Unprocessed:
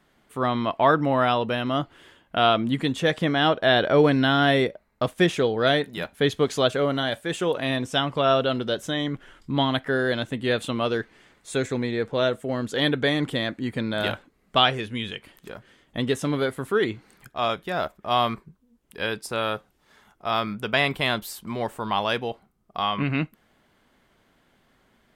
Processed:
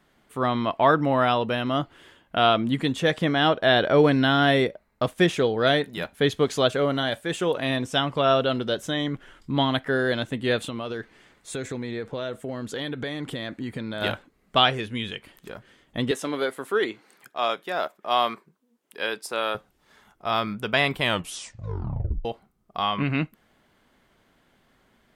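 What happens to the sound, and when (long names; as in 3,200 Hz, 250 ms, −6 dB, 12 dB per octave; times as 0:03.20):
0:10.67–0:14.02: downward compressor, threshold −27 dBFS
0:16.11–0:19.55: high-pass filter 330 Hz
0:21.00: tape stop 1.25 s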